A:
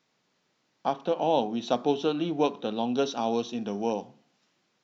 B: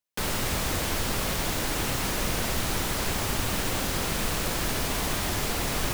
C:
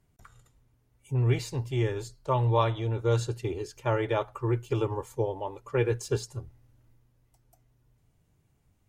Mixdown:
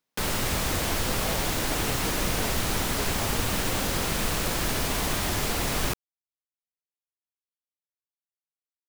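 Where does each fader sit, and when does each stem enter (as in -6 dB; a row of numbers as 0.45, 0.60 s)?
-13.0 dB, +1.0 dB, off; 0.00 s, 0.00 s, off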